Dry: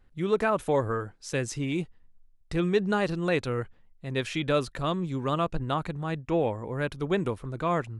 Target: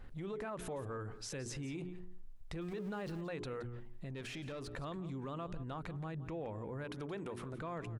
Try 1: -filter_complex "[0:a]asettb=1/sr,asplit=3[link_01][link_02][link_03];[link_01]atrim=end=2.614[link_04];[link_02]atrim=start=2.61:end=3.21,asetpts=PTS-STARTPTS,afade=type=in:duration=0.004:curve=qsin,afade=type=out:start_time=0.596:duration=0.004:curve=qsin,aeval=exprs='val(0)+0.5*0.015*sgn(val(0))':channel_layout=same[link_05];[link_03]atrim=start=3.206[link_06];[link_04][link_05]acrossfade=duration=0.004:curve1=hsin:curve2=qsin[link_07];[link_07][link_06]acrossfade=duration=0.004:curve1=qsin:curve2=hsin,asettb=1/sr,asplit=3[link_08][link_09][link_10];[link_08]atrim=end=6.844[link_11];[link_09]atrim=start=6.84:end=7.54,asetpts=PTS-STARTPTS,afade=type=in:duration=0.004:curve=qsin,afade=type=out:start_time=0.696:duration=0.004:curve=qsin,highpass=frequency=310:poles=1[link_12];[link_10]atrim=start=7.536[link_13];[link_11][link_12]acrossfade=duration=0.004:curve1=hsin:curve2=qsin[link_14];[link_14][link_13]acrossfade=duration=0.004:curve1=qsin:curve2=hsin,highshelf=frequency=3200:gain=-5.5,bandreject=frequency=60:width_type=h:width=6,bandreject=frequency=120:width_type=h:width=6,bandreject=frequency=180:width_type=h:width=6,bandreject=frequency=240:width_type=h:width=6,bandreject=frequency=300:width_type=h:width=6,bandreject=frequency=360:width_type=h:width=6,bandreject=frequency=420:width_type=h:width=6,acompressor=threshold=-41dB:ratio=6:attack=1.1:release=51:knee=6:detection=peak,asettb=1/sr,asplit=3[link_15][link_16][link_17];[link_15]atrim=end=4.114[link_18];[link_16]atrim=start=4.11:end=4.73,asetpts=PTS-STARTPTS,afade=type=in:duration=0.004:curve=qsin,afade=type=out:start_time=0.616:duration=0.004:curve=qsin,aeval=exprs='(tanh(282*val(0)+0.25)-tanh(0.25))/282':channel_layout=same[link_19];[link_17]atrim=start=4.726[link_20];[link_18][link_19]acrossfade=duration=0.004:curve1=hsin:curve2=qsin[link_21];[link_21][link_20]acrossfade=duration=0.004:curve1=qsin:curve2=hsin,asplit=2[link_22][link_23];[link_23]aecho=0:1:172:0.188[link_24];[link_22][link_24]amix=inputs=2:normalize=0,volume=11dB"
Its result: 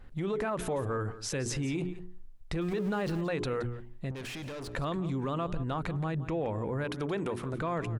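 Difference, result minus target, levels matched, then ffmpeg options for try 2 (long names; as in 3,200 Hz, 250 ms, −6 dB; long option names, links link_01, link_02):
downward compressor: peak gain reduction −10 dB
-filter_complex "[0:a]asettb=1/sr,asplit=3[link_01][link_02][link_03];[link_01]atrim=end=2.614[link_04];[link_02]atrim=start=2.61:end=3.21,asetpts=PTS-STARTPTS,afade=type=in:duration=0.004:curve=qsin,afade=type=out:start_time=0.596:duration=0.004:curve=qsin,aeval=exprs='val(0)+0.5*0.015*sgn(val(0))':channel_layout=same[link_05];[link_03]atrim=start=3.206[link_06];[link_04][link_05]acrossfade=duration=0.004:curve1=hsin:curve2=qsin[link_07];[link_07][link_06]acrossfade=duration=0.004:curve1=qsin:curve2=hsin,asettb=1/sr,asplit=3[link_08][link_09][link_10];[link_08]atrim=end=6.844[link_11];[link_09]atrim=start=6.84:end=7.54,asetpts=PTS-STARTPTS,afade=type=in:duration=0.004:curve=qsin,afade=type=out:start_time=0.696:duration=0.004:curve=qsin,highpass=frequency=310:poles=1[link_12];[link_10]atrim=start=7.536[link_13];[link_11][link_12]acrossfade=duration=0.004:curve1=hsin:curve2=qsin[link_14];[link_14][link_13]acrossfade=duration=0.004:curve1=qsin:curve2=hsin,highshelf=frequency=3200:gain=-5.5,bandreject=frequency=60:width_type=h:width=6,bandreject=frequency=120:width_type=h:width=6,bandreject=frequency=180:width_type=h:width=6,bandreject=frequency=240:width_type=h:width=6,bandreject=frequency=300:width_type=h:width=6,bandreject=frequency=360:width_type=h:width=6,bandreject=frequency=420:width_type=h:width=6,acompressor=threshold=-53dB:ratio=6:attack=1.1:release=51:knee=6:detection=peak,asettb=1/sr,asplit=3[link_15][link_16][link_17];[link_15]atrim=end=4.114[link_18];[link_16]atrim=start=4.11:end=4.73,asetpts=PTS-STARTPTS,afade=type=in:duration=0.004:curve=qsin,afade=type=out:start_time=0.616:duration=0.004:curve=qsin,aeval=exprs='(tanh(282*val(0)+0.25)-tanh(0.25))/282':channel_layout=same[link_19];[link_17]atrim=start=4.726[link_20];[link_18][link_19]acrossfade=duration=0.004:curve1=hsin:curve2=qsin[link_21];[link_21][link_20]acrossfade=duration=0.004:curve1=qsin:curve2=hsin,asplit=2[link_22][link_23];[link_23]aecho=0:1:172:0.188[link_24];[link_22][link_24]amix=inputs=2:normalize=0,volume=11dB"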